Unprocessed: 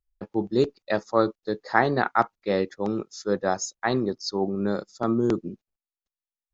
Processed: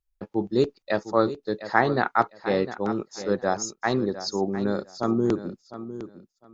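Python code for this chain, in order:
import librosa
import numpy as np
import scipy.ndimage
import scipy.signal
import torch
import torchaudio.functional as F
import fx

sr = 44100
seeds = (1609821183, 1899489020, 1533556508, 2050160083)

y = fx.echo_feedback(x, sr, ms=705, feedback_pct=19, wet_db=-13)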